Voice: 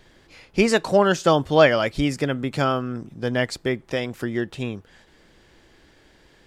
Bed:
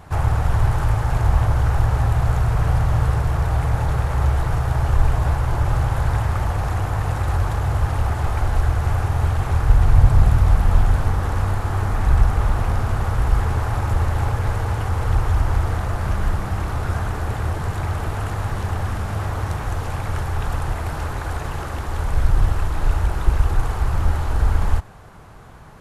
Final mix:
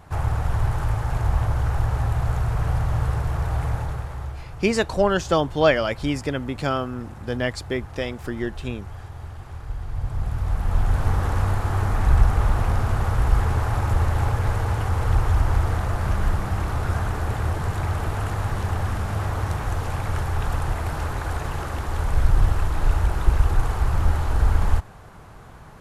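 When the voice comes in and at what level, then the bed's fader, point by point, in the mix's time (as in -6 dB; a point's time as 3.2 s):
4.05 s, -2.5 dB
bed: 3.7 s -4.5 dB
4.46 s -17 dB
9.86 s -17 dB
11.13 s -1 dB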